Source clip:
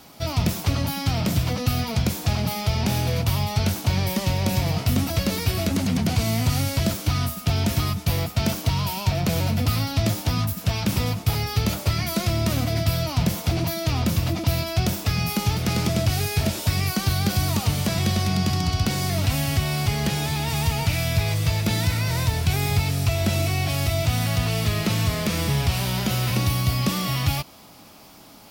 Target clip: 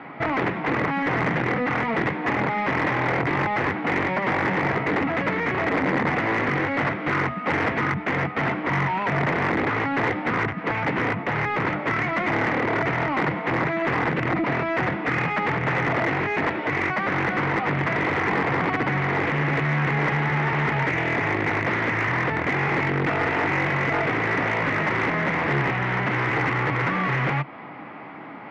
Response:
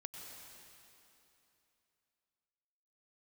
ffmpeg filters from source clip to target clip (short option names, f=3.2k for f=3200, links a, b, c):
-filter_complex "[0:a]asplit=2[a][b];[b]acompressor=threshold=-30dB:ratio=16,volume=2dB[c];[a][c]amix=inputs=2:normalize=0,aeval=exprs='(mod(5.96*val(0)+1,2)-1)/5.96':c=same,highpass=130,equalizer=f=140:t=q:w=4:g=8,equalizer=f=300:t=q:w=4:g=4,equalizer=f=620:t=q:w=4:g=-4,equalizer=f=2k:t=q:w=4:g=9,lowpass=f=2.2k:w=0.5412,lowpass=f=2.2k:w=1.3066,asoftclip=type=tanh:threshold=-11dB,asplit=2[d][e];[e]highpass=f=720:p=1,volume=13dB,asoftclip=type=tanh:threshold=-11.5dB[f];[d][f]amix=inputs=2:normalize=0,lowpass=f=1.5k:p=1,volume=-6dB"